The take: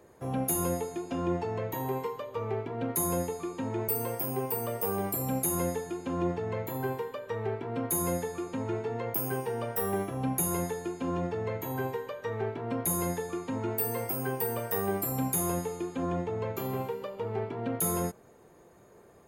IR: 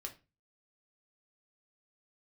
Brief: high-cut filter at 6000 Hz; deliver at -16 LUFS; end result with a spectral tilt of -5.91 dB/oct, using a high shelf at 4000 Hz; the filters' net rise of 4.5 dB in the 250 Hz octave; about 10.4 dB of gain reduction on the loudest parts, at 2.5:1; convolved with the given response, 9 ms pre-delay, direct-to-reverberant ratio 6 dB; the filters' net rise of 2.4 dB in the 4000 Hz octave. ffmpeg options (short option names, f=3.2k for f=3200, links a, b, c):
-filter_complex "[0:a]lowpass=6k,equalizer=f=250:t=o:g=6,highshelf=f=4k:g=-4.5,equalizer=f=4k:t=o:g=6.5,acompressor=threshold=-39dB:ratio=2.5,asplit=2[a][b];[1:a]atrim=start_sample=2205,adelay=9[c];[b][c]afir=irnorm=-1:irlink=0,volume=-3dB[d];[a][d]amix=inputs=2:normalize=0,volume=22dB"